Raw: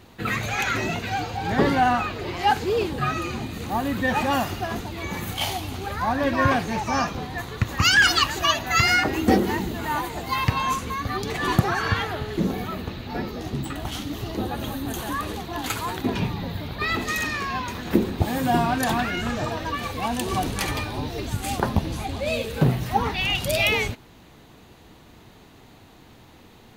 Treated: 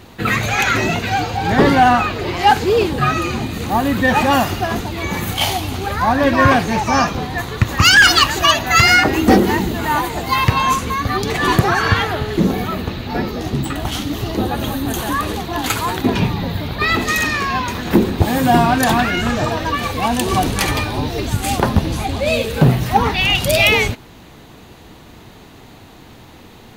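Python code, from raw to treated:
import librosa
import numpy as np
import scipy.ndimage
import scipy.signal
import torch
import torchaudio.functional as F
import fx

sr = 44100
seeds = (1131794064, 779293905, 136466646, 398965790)

y = np.clip(x, -10.0 ** (-12.5 / 20.0), 10.0 ** (-12.5 / 20.0))
y = y * librosa.db_to_amplitude(8.5)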